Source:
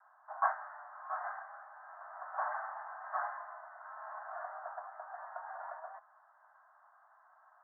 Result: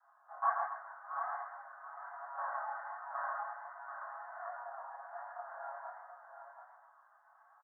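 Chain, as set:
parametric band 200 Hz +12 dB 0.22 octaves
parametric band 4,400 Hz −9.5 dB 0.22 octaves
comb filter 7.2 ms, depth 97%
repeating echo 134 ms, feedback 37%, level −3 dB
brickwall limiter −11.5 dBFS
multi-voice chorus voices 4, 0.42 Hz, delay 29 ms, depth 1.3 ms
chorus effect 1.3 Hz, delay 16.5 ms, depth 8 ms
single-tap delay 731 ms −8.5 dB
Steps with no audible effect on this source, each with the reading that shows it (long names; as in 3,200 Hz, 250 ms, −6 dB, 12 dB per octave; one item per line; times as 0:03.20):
parametric band 200 Hz: nothing at its input below 510 Hz
parametric band 4,400 Hz: nothing at its input above 2,000 Hz
brickwall limiter −11.5 dBFS: peak of its input −13.5 dBFS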